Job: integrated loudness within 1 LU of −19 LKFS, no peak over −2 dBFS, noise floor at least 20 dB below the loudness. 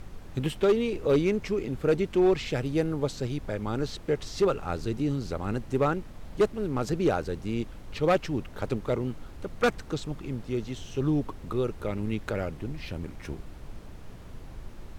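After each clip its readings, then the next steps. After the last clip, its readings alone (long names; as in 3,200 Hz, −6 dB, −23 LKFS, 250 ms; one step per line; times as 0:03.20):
share of clipped samples 0.6%; peaks flattened at −16.5 dBFS; background noise floor −44 dBFS; target noise floor −49 dBFS; integrated loudness −29.0 LKFS; sample peak −16.5 dBFS; target loudness −19.0 LKFS
→ clipped peaks rebuilt −16.5 dBFS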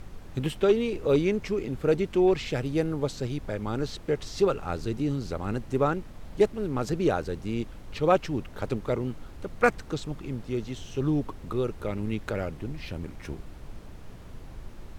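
share of clipped samples 0.0%; background noise floor −44 dBFS; target noise floor −49 dBFS
→ noise reduction from a noise print 6 dB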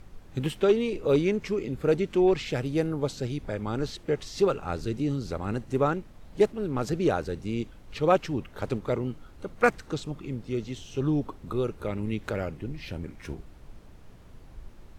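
background noise floor −49 dBFS; integrated loudness −28.5 LKFS; sample peak −8.0 dBFS; target loudness −19.0 LKFS
→ level +9.5 dB
brickwall limiter −2 dBFS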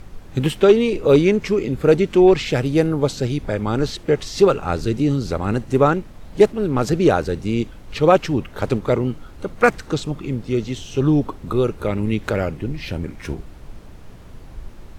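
integrated loudness −19.5 LKFS; sample peak −2.0 dBFS; background noise floor −40 dBFS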